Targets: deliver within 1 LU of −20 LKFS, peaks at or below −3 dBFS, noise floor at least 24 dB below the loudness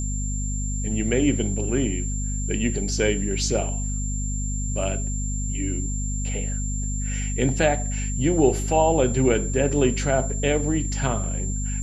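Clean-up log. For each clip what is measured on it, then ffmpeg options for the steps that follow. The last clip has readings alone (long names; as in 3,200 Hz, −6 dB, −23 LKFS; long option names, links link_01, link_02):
mains hum 50 Hz; hum harmonics up to 250 Hz; level of the hum −24 dBFS; interfering tone 7,300 Hz; level of the tone −32 dBFS; integrated loudness −24.0 LKFS; sample peak −5.5 dBFS; target loudness −20.0 LKFS
→ -af "bandreject=frequency=50:width_type=h:width=4,bandreject=frequency=100:width_type=h:width=4,bandreject=frequency=150:width_type=h:width=4,bandreject=frequency=200:width_type=h:width=4,bandreject=frequency=250:width_type=h:width=4"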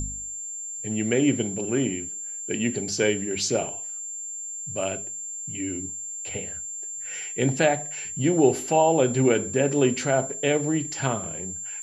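mains hum none found; interfering tone 7,300 Hz; level of the tone −32 dBFS
→ -af "bandreject=frequency=7300:width=30"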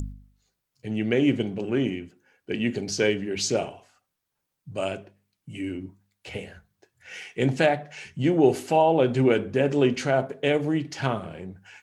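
interfering tone none found; integrated loudness −24.5 LKFS; sample peak −6.5 dBFS; target loudness −20.0 LKFS
→ -af "volume=4.5dB,alimiter=limit=-3dB:level=0:latency=1"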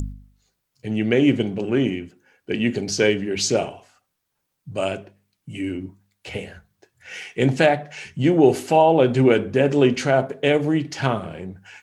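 integrated loudness −20.5 LKFS; sample peak −3.0 dBFS; background noise floor −77 dBFS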